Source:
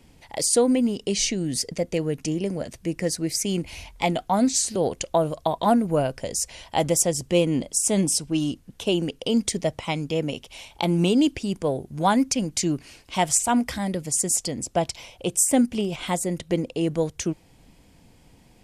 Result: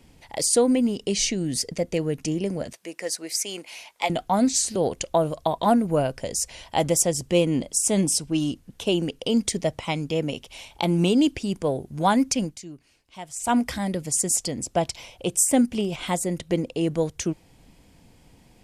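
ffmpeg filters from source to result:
-filter_complex "[0:a]asettb=1/sr,asplit=3[a][b][c];[a]atrim=end=2.734[d];[b]atrim=start=2.73:end=4.1,asetpts=PTS-STARTPTS,afade=t=in:d=0.004:c=qsin,afade=t=out:st=1.366:d=0.004:c=qsin,highpass=560[e];[c]atrim=start=4.096[f];[d][e]acrossfade=d=0.004:c1=hsin:c2=qsin[g];[g][f]acrossfade=d=0.004:c1=qsin:c2=hsin,asplit=3[h][i][j];[h]atrim=end=12.58,asetpts=PTS-STARTPTS,afade=t=out:st=12.44:d=0.14:silence=0.158489[k];[i]atrim=start=12.58:end=13.36,asetpts=PTS-STARTPTS,volume=-16dB[l];[j]atrim=start=13.36,asetpts=PTS-STARTPTS,afade=t=in:d=0.14:silence=0.158489[m];[k][l][m]concat=n=3:v=0:a=1"

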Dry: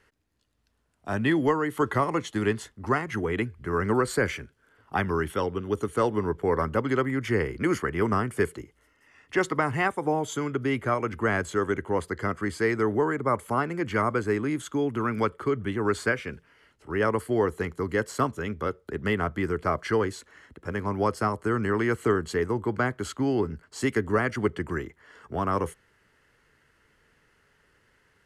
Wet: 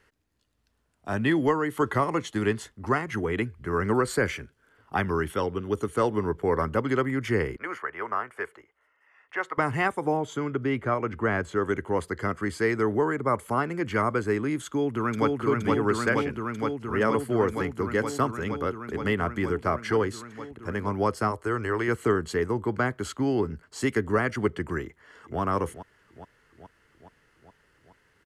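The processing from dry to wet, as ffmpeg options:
-filter_complex "[0:a]asettb=1/sr,asplit=3[a][b][c];[a]atrim=end=7.564[d];[b]atrim=start=7.56:end=9.58,asetpts=PTS-STARTPTS,afade=t=in:d=0.004:c=qsin,afade=t=out:st=2.016:d=0.004:c=qsin,acrossover=split=550 2400:gain=0.0631 1 0.141[e][f][g];[e][f][g]amix=inputs=3:normalize=0[h];[c]atrim=start=9.576[i];[d][h]acrossfade=d=0.004:c1=hsin:c2=qsin[j];[j][i]acrossfade=d=0.004:c1=qsin:c2=hsin,asettb=1/sr,asplit=3[k][l][m];[k]atrim=end=10.174[n];[l]atrim=start=10.17:end=11.66,asetpts=PTS-STARTPTS,afade=t=in:d=0.004:c=qsin,afade=t=out:st=1.486:d=0.004:c=qsin,lowpass=f=2.7k:p=1[o];[m]atrim=start=11.656[p];[n][o]acrossfade=d=0.004:c1=hsin:c2=qsin[q];[q][p]acrossfade=d=0.004:c1=qsin:c2=hsin,asplit=2[r][s];[s]afade=t=in:st=14.66:d=0.01,afade=t=out:st=15.32:d=0.01,aecho=0:1:470|940|1410|1880|2350|2820|3290|3760|4230|4700|5170|5640:0.841395|0.715186|0.607908|0.516722|0.439214|0.373331|0.317332|0.269732|0.229272|0.194881|0.165649|0.140802[t];[r][t]amix=inputs=2:normalize=0,asettb=1/sr,asplit=3[u][v][w];[u]atrim=end=21.314[x];[v]atrim=start=21.31:end=21.88,asetpts=PTS-STARTPTS,afade=t=in:d=0.004:c=qsin,afade=t=out:st=0.566:d=0.004:c=qsin,equalizer=f=190:w=2.3:g=-14.5[y];[w]atrim=start=21.876[z];[x][y]acrossfade=d=0.004:c1=hsin:c2=qsin[aa];[aa][z]acrossfade=d=0.004:c1=qsin:c2=hsin,asplit=2[ab][ac];[ac]afade=t=in:st=24.84:d=0.01,afade=t=out:st=25.4:d=0.01,aecho=0:1:420|840|1260|1680|2100|2520|2940|3360|3780|4200:0.251189|0.175832|0.123082|0.0861577|0.0603104|0.0422173|0.0295521|0.0206865|0.0144805|0.0101364[ad];[ab][ad]amix=inputs=2:normalize=0"

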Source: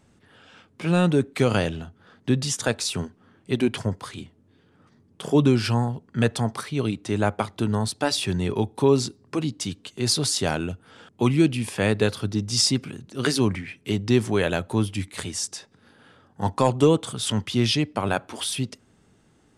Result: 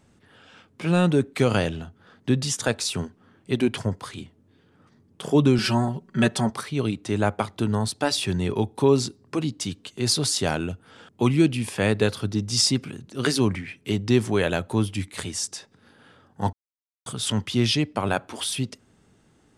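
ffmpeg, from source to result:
-filter_complex "[0:a]asettb=1/sr,asplit=3[a][b][c];[a]atrim=end=5.584[d];[b]atrim=start=5.58:end=6.5,asetpts=PTS-STARTPTS,afade=t=in:d=0.004:c=qsin,afade=t=out:st=0.916:d=0.004:c=qsin,aecho=1:1:5.3:0.97,atrim=end_sample=40572[e];[c]atrim=start=6.496[f];[d][e]acrossfade=d=0.004:c1=hsin:c2=qsin[g];[g][f]acrossfade=d=0.004:c1=qsin:c2=hsin,asplit=3[h][i][j];[h]atrim=end=16.53,asetpts=PTS-STARTPTS,afade=t=out:st=16.526:d=0.004:c=hsin[k];[i]atrim=start=16.53:end=17.06,asetpts=PTS-STARTPTS,volume=0[l];[j]atrim=start=17.06,asetpts=PTS-STARTPTS,afade=t=in:d=0.004:c=hsin[m];[k][l][m]concat=n=3:v=0:a=1"

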